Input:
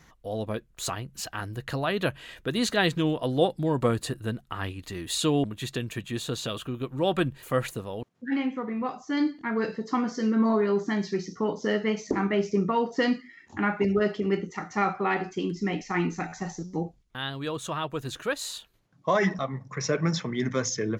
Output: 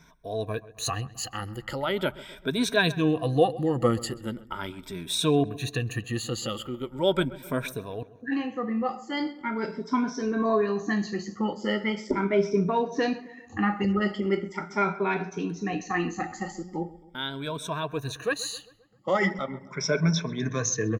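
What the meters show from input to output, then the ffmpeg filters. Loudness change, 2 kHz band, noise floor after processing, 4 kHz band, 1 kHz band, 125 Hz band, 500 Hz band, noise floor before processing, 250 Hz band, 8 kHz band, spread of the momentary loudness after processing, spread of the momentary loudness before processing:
0.0 dB, +1.0 dB, -52 dBFS, +1.0 dB, 0.0 dB, +0.5 dB, +0.5 dB, -60 dBFS, -0.5 dB, +1.5 dB, 11 LU, 10 LU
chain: -filter_complex "[0:a]afftfilt=real='re*pow(10,16/40*sin(2*PI*(1.6*log(max(b,1)*sr/1024/100)/log(2)-(0.4)*(pts-256)/sr)))':imag='im*pow(10,16/40*sin(2*PI*(1.6*log(max(b,1)*sr/1024/100)/log(2)-(0.4)*(pts-256)/sr)))':win_size=1024:overlap=0.75,asplit=2[s0][s1];[s1]adelay=132,lowpass=f=2200:p=1,volume=0.126,asplit=2[s2][s3];[s3]adelay=132,lowpass=f=2200:p=1,volume=0.55,asplit=2[s4][s5];[s5]adelay=132,lowpass=f=2200:p=1,volume=0.55,asplit=2[s6][s7];[s7]adelay=132,lowpass=f=2200:p=1,volume=0.55,asplit=2[s8][s9];[s9]adelay=132,lowpass=f=2200:p=1,volume=0.55[s10];[s2][s4][s6][s8][s10]amix=inputs=5:normalize=0[s11];[s0][s11]amix=inputs=2:normalize=0,volume=0.75"

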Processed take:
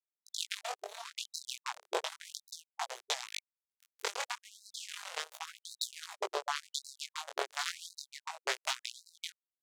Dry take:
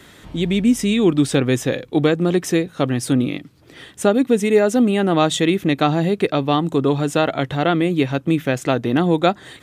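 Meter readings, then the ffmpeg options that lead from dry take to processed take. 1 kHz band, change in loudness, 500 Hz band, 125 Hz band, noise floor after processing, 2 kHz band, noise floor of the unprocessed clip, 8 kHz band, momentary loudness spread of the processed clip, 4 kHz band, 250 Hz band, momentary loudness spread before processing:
-17.5 dB, -21.5 dB, -26.5 dB, under -40 dB, under -85 dBFS, -14.5 dB, -47 dBFS, -10.0 dB, 9 LU, -10.5 dB, under -40 dB, 5 LU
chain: -filter_complex "[0:a]acontrast=81,highshelf=f=4400:g=4.5,acompressor=threshold=0.0562:ratio=8,aresample=16000,acrusher=bits=4:mode=log:mix=0:aa=0.000001,aresample=44100,equalizer=f=270:w=3.4:g=2.5,asplit=2[s0][s1];[s1]aecho=0:1:111|222|333|444|555:0.15|0.0853|0.0486|0.0277|0.0158[s2];[s0][s2]amix=inputs=2:normalize=0,acrusher=bits=2:mix=0:aa=0.5,flanger=delay=17:depth=7.1:speed=0.34,asoftclip=type=tanh:threshold=0.1,acrossover=split=1200[s3][s4];[s3]aeval=exprs='val(0)*(1-0.7/2+0.7/2*cos(2*PI*1.1*n/s))':c=same[s5];[s4]aeval=exprs='val(0)*(1-0.7/2-0.7/2*cos(2*PI*1.1*n/s))':c=same[s6];[s5][s6]amix=inputs=2:normalize=0,afftfilt=real='re*gte(b*sr/1024,360*pow(3900/360,0.5+0.5*sin(2*PI*0.91*pts/sr)))':imag='im*gte(b*sr/1024,360*pow(3900/360,0.5+0.5*sin(2*PI*0.91*pts/sr)))':win_size=1024:overlap=0.75,volume=3.55"

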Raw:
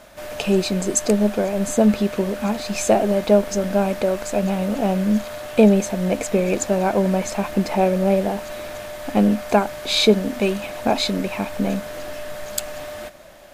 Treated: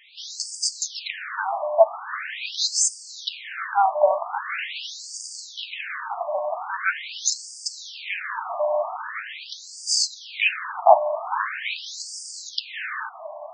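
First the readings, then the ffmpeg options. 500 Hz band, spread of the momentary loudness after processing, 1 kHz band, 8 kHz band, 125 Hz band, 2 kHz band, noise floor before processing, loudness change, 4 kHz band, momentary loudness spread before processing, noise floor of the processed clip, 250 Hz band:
-6.0 dB, 14 LU, +2.5 dB, +2.0 dB, under -40 dB, +3.0 dB, -34 dBFS, -5.0 dB, 0.0 dB, 15 LU, -42 dBFS, under -40 dB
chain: -af "dynaudnorm=f=100:g=3:m=2.99,afftfilt=real='re*between(b*sr/1024,810*pow(6600/810,0.5+0.5*sin(2*PI*0.43*pts/sr))/1.41,810*pow(6600/810,0.5+0.5*sin(2*PI*0.43*pts/sr))*1.41)':imag='im*between(b*sr/1024,810*pow(6600/810,0.5+0.5*sin(2*PI*0.43*pts/sr))/1.41,810*pow(6600/810,0.5+0.5*sin(2*PI*0.43*pts/sr))*1.41)':win_size=1024:overlap=0.75,volume=1.5"

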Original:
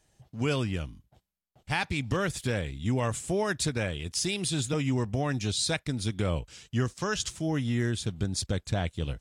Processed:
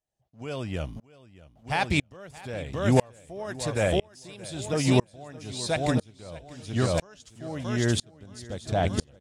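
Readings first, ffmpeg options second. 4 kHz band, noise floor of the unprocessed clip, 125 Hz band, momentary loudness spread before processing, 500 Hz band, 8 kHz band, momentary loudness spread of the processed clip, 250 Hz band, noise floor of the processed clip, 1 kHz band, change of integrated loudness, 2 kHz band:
-1.5 dB, -76 dBFS, +0.5 dB, 4 LU, +4.0 dB, -3.5 dB, 20 LU, +1.5 dB, -62 dBFS, +3.5 dB, +2.0 dB, +0.5 dB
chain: -af "equalizer=f=650:w=1.7:g=9,aecho=1:1:624|1248|1872|2496|3120:0.447|0.201|0.0905|0.0407|0.0183,aeval=exprs='val(0)*pow(10,-35*if(lt(mod(-1*n/s,1),2*abs(-1)/1000),1-mod(-1*n/s,1)/(2*abs(-1)/1000),(mod(-1*n/s,1)-2*abs(-1)/1000)/(1-2*abs(-1)/1000))/20)':c=same,volume=2.51"

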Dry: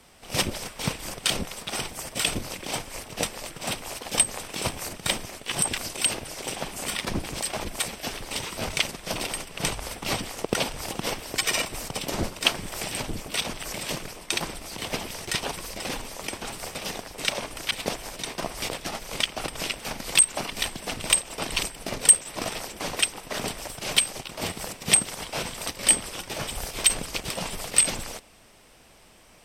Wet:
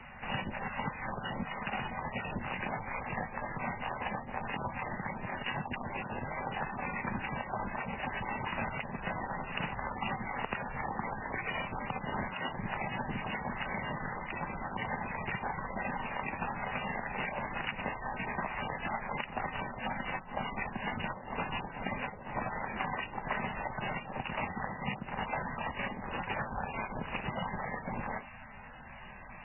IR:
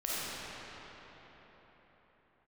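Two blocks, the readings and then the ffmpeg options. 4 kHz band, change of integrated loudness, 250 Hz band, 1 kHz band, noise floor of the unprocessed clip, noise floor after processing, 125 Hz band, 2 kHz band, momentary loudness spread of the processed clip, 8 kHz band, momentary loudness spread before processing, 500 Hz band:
-19.0 dB, -10.0 dB, -3.5 dB, +0.5 dB, -50 dBFS, -48 dBFS, -3.0 dB, -4.5 dB, 2 LU, under -40 dB, 12 LU, -6.5 dB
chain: -filter_complex "[0:a]acrossover=split=110|970[s0][s1][s2];[s0]acompressor=threshold=0.00251:ratio=4[s3];[s1]acompressor=threshold=0.0158:ratio=4[s4];[s2]acompressor=threshold=0.0158:ratio=4[s5];[s3][s4][s5]amix=inputs=3:normalize=0,superequalizer=6b=0.355:7b=0.398:8b=0.562:9b=1.41:11b=1.58,acompressor=threshold=0.0141:ratio=6,volume=2.24" -ar 11025 -c:a libmp3lame -b:a 8k

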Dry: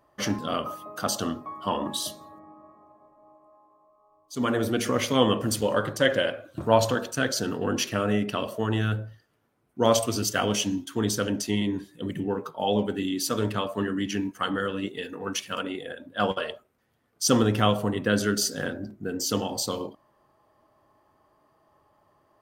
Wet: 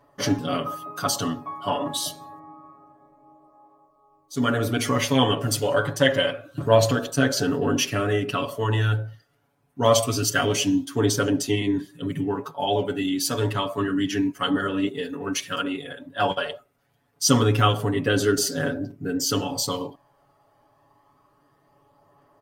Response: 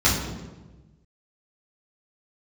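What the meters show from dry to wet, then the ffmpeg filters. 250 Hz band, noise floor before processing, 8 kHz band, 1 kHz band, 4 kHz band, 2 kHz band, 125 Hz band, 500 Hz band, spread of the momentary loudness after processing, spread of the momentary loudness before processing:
+2.5 dB, -67 dBFS, +3.0 dB, +3.0 dB, +3.5 dB, +3.0 dB, +5.5 dB, +2.5 dB, 10 LU, 11 LU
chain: -af "aphaser=in_gain=1:out_gain=1:delay=1.5:decay=0.29:speed=0.27:type=triangular,aecho=1:1:7.1:0.99"

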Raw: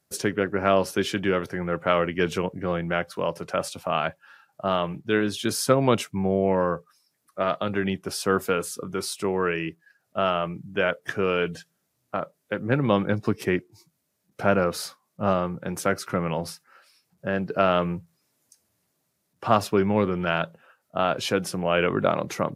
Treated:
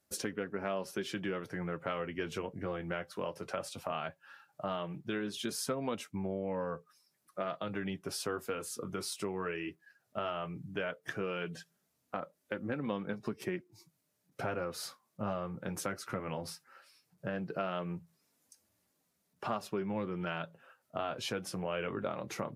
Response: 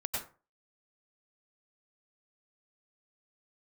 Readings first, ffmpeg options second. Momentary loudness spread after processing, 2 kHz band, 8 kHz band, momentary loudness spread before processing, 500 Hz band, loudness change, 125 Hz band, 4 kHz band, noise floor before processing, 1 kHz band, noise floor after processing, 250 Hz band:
6 LU, -12.5 dB, -9.0 dB, 10 LU, -13.5 dB, -13.0 dB, -13.0 dB, -10.5 dB, -75 dBFS, -13.5 dB, -79 dBFS, -12.0 dB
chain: -af "flanger=delay=3.3:depth=6.6:regen=-42:speed=0.16:shape=triangular,acompressor=threshold=0.0158:ratio=3"

